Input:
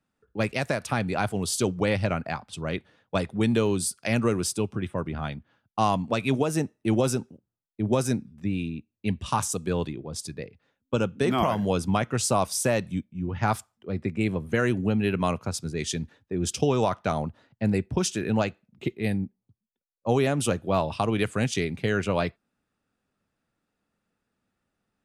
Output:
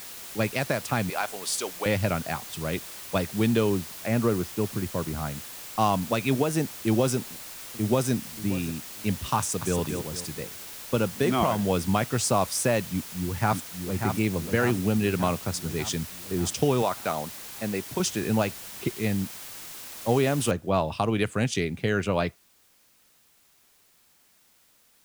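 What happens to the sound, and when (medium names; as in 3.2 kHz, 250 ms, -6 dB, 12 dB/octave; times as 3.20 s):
1.10–1.86 s: high-pass 630 Hz
3.70–5.79 s: low-pass 1.7 kHz
7.16–8.13 s: echo throw 580 ms, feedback 20%, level -15 dB
9.38–9.78 s: echo throw 230 ms, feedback 35%, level -6 dB
12.91–14.06 s: echo throw 590 ms, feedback 65%, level -6 dB
16.82–18.00 s: high-pass 400 Hz 6 dB/octave
20.51 s: noise floor step -41 dB -62 dB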